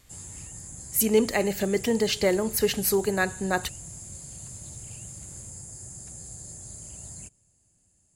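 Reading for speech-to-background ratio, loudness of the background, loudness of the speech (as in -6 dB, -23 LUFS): 14.5 dB, -39.5 LUFS, -25.0 LUFS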